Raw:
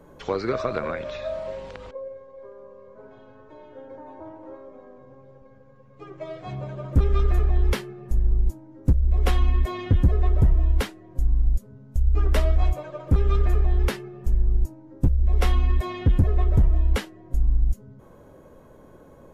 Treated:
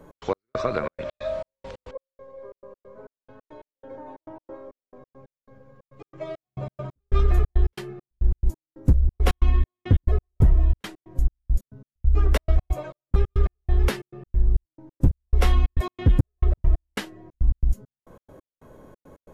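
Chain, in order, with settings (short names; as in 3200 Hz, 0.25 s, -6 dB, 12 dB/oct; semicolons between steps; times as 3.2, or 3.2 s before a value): step gate "x.x..xxx.x.xx.." 137 bpm -60 dB; gain +1.5 dB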